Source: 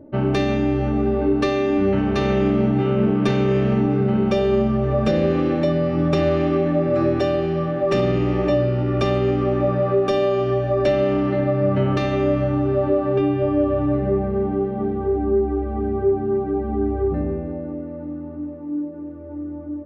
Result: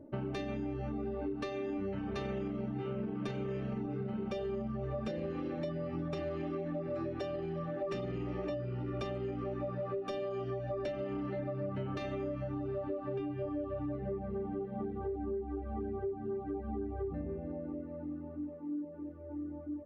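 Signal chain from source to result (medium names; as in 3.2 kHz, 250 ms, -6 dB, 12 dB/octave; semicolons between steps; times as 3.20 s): reverb removal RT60 0.62 s; compression, threshold -26 dBFS, peak gain reduction 11 dB; trim -8.5 dB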